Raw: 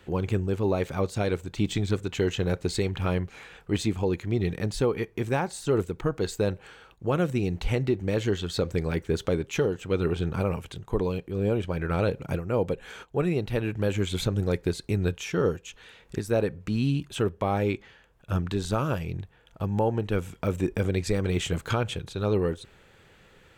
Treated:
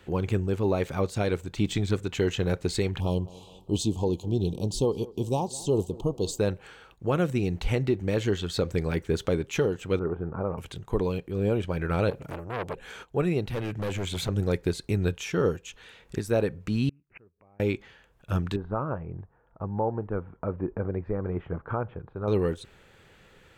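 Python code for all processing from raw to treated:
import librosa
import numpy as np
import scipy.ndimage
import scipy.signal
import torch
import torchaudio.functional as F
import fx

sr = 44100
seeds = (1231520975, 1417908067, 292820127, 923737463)

y = fx.chain(x, sr, fx.ellip_bandstop(low_hz=1000.0, high_hz=3000.0, order=3, stop_db=50),
    fx.dynamic_eq(hz=6500.0, q=1.2, threshold_db=-54.0, ratio=4.0, max_db=5),
    fx.echo_tape(ms=202, feedback_pct=60, wet_db=-19, lp_hz=1800.0, drive_db=11.0, wow_cents=38), at=(3.0, 6.39))
y = fx.chain(y, sr, fx.lowpass(hz=1300.0, slope=24),
    fx.low_shelf(hz=270.0, db=-7.0), at=(9.99, 10.58))
y = fx.chain(y, sr, fx.high_shelf(hz=8400.0, db=6.0),
    fx.transformer_sat(knee_hz=1500.0), at=(12.1, 12.77))
y = fx.chain(y, sr, fx.highpass(hz=71.0, slope=24),
    fx.clip_hard(threshold_db=-26.5), at=(13.51, 14.29))
y = fx.chain(y, sr, fx.lowpass(hz=1300.0, slope=6),
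    fx.gate_flip(shuts_db=-32.0, range_db=-33),
    fx.resample_bad(factor=8, down='none', up='filtered'), at=(16.89, 17.6))
y = fx.chain(y, sr, fx.lowpass(hz=1200.0, slope=24),
    fx.tilt_shelf(db=-5.0, hz=910.0), at=(18.56, 22.28))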